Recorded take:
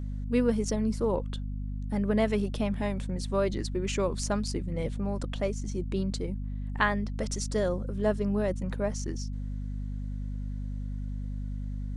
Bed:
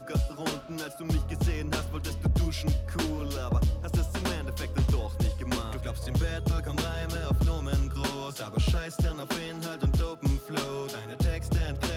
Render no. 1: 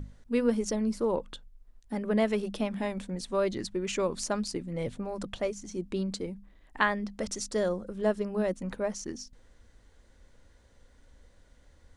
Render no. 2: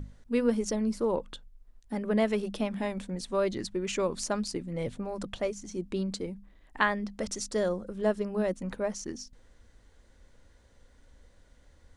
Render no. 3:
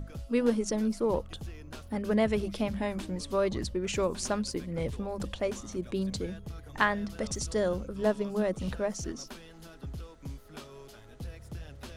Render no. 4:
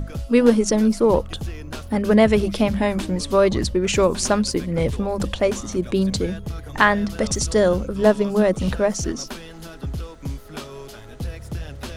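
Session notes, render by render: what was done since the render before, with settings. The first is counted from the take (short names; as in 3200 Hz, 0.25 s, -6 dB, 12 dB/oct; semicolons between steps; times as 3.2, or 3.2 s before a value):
notches 50/100/150/200/250 Hz
nothing audible
add bed -14.5 dB
gain +11.5 dB; limiter -1 dBFS, peak gain reduction 2.5 dB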